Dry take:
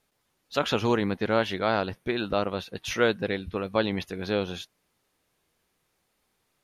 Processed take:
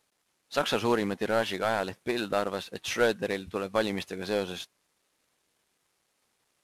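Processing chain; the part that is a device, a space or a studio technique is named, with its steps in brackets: early wireless headset (HPF 210 Hz 6 dB/oct; CVSD 64 kbps)

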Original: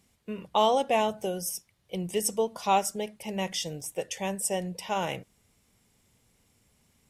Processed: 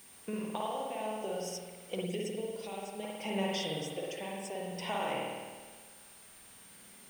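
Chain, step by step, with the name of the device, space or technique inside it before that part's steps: medium wave at night (BPF 200–4400 Hz; compressor 5:1, threshold -39 dBFS, peak gain reduction 18.5 dB; tremolo 0.58 Hz, depth 54%; whine 9000 Hz -60 dBFS; white noise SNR 16 dB); spring tank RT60 1.5 s, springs 51 ms, chirp 75 ms, DRR -3 dB; 2.04–3.03 bell 1100 Hz -10.5 dB 0.92 oct; gain +4 dB

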